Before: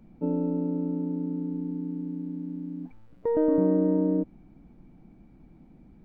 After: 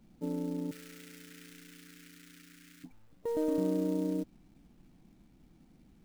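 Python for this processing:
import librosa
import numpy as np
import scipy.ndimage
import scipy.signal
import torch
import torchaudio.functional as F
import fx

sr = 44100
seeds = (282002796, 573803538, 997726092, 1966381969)

y = fx.quant_companded(x, sr, bits=6)
y = fx.curve_eq(y, sr, hz=(120.0, 210.0, 500.0, 770.0, 1400.0, 2000.0, 3900.0), db=(0, -23, -7, -27, 11, 13, 7), at=(0.71, 2.84))
y = F.gain(torch.from_numpy(y), -8.0).numpy()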